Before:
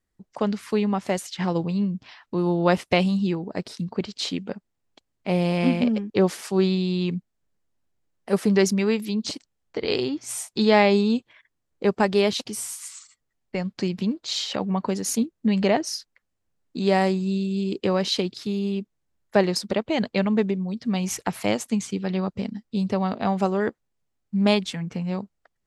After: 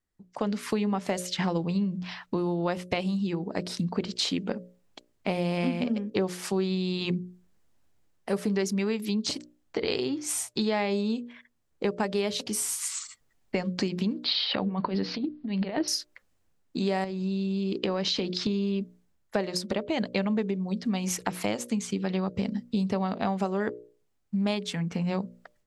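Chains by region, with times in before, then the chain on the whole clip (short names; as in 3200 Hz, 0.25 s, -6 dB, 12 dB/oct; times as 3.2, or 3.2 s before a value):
14.24–15.88 steep low-pass 4800 Hz 72 dB/oct + negative-ratio compressor -27 dBFS, ratio -0.5
17.04–18.81 LPF 6100 Hz 24 dB/oct + compressor, threshold -26 dBFS
whole clip: AGC gain up to 15.5 dB; notches 60/120/180/240/300/360/420/480/540/600 Hz; compressor 4:1, threshold -21 dBFS; gain -5 dB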